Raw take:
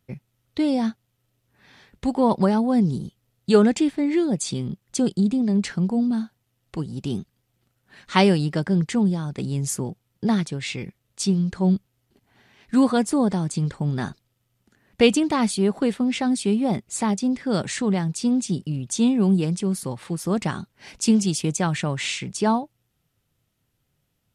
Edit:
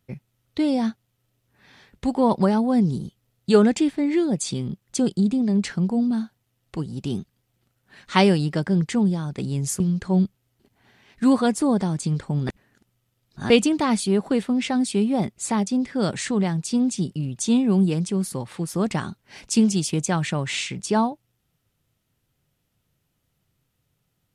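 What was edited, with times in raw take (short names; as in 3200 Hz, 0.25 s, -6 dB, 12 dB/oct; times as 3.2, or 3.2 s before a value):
9.8–11.31 cut
14–15.01 reverse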